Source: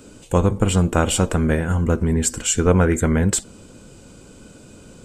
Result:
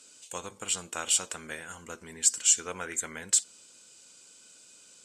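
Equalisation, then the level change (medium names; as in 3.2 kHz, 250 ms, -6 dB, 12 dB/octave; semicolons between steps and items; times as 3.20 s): band-pass filter 6.1 kHz, Q 0.92; 0.0 dB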